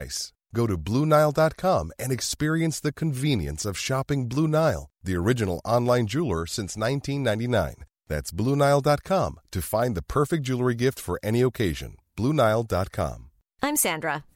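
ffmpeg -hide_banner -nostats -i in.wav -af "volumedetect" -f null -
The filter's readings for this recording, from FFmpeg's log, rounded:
mean_volume: -24.8 dB
max_volume: -7.6 dB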